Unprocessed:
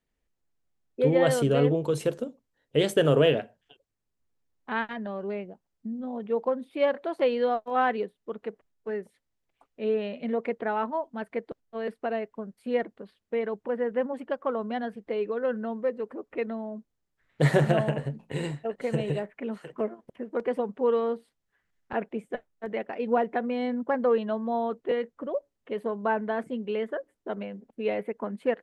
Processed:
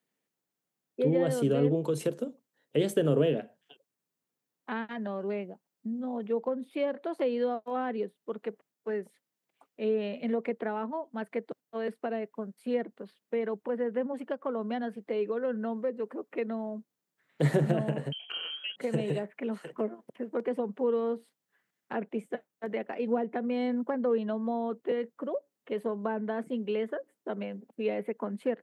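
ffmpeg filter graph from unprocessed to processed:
-filter_complex "[0:a]asettb=1/sr,asplit=3[a][b][c];[a]atrim=end=18.124[d];[b]atrim=start=18.12:end=18.76,asetpts=PTS-STARTPTS,afade=t=in:d=0.004:c=qsin,afade=t=out:st=0.636:d=0.004:c=qsin,aeval=exprs='if(lt(val(0),0),0.708*val(0),val(0))':c=same,lowpass=f=2.8k:t=q:w=0.5098,lowpass=f=2.8k:t=q:w=0.6013,lowpass=f=2.8k:t=q:w=0.9,lowpass=f=2.8k:t=q:w=2.563,afreqshift=-3300,acompressor=mode=upward:threshold=-33dB:ratio=2.5:attack=3.2:release=140:knee=2.83:detection=peak[e];[c]atrim=start=18.756[f];[d][e]acrossfade=d=0.004:c1=hsin:c2=qsin[g];[g][f]acrossfade=d=0.004:c1=qsin:c2=hsin,highpass=f=150:w=0.5412,highpass=f=150:w=1.3066,highshelf=f=10k:g=8,acrossover=split=430[h][i];[i]acompressor=threshold=-34dB:ratio=6[j];[h][j]amix=inputs=2:normalize=0"

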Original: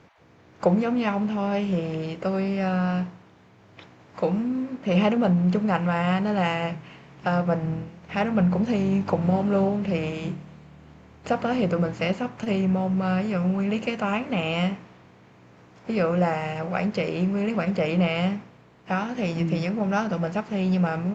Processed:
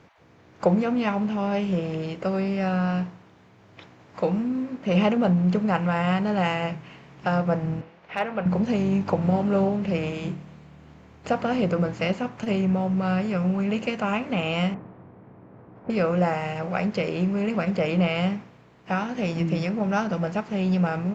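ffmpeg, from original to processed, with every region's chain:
-filter_complex "[0:a]asettb=1/sr,asplit=3[a][b][c];[a]atrim=end=7.814[d];[b]atrim=start=7.81:end=8.46,asetpts=PTS-STARTPTS,afade=t=in:d=0.004:c=qsin,afade=t=out:st=0.646:d=0.004:c=qsin,acrossover=split=370 4500:gain=0.2 1 0.141[e][f][g];[e][f][g]amix=inputs=3:normalize=0,volume=16dB,asoftclip=hard,volume=-16dB[h];[c]atrim=start=8.456[i];[d][h]acrossfade=d=0.004:c1=hsin:c2=qsin[j];[j][i]acrossfade=d=0.004:c1=qsin:c2=hsin,asettb=1/sr,asplit=3[k][l][m];[k]atrim=end=14.744[n];[l]atrim=start=14.74:end=15.9,asetpts=PTS-STARTPTS,afade=t=in:d=0.004:c=qsin,afade=t=out:st=1.156:d=0.004:c=qsin,lowpass=1.7k,tiltshelf=f=1.3k:g=6.5,bandreject=f=60:t=h:w=6,bandreject=f=120:t=h:w=6,bandreject=f=180:t=h:w=6,bandreject=f=240:t=h:w=6,bandreject=f=300:t=h:w=6,bandreject=f=360:t=h:w=6,bandreject=f=420:t=h:w=6,bandreject=f=480:t=h:w=6,bandreject=f=540:t=h:w=6[o];[m]atrim=start=15.896[p];[n][o]acrossfade=d=0.004:c1=hsin:c2=qsin[q];[q][p]acrossfade=d=0.004:c1=qsin:c2=hsin"

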